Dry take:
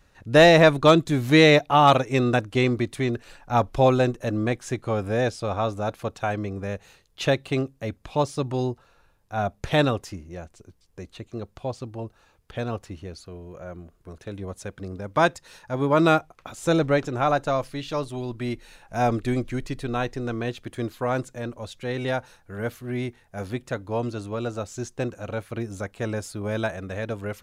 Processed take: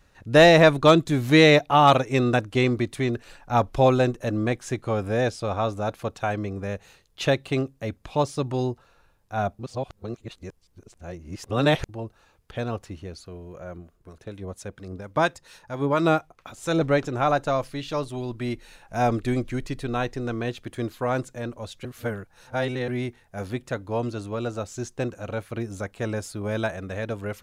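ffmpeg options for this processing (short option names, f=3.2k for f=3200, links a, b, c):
-filter_complex "[0:a]asettb=1/sr,asplit=3[a][b][c];[a]atrim=end=13.784[d];[b]atrim=start=13.78:end=16.81,asetpts=PTS-STARTPTS,afade=t=in:d=0.004:c=qsin,afade=t=out:st=3.026:d=0.004:c=qsin,acrossover=split=990[e][f];[e]aeval=exprs='val(0)*(1-0.5/2+0.5/2*cos(2*PI*4.3*n/s))':c=same[g];[f]aeval=exprs='val(0)*(1-0.5/2-0.5/2*cos(2*PI*4.3*n/s))':c=same[h];[g][h]amix=inputs=2:normalize=0[i];[c]atrim=start=16.806[j];[d][i]acrossfade=d=0.004:c1=hsin:c2=qsin[k];[k][j]acrossfade=d=0.004:c1=qsin:c2=hsin,asplit=5[l][m][n][o][p];[l]atrim=end=9.592[q];[m]atrim=start=9.588:end=11.892,asetpts=PTS-STARTPTS,areverse[r];[n]atrim=start=11.888:end=21.852[s];[o]atrim=start=21.848:end=22.882,asetpts=PTS-STARTPTS,areverse[t];[p]atrim=start=22.878[u];[q][r]acrossfade=d=0.004:c1=hsin:c2=hsin[v];[v][s]acrossfade=d=0.004:c1=hsin:c2=hsin[w];[w][t]acrossfade=d=0.004:c1=hsin:c2=hsin[x];[x][u]acrossfade=d=0.004:c1=hsin:c2=hsin"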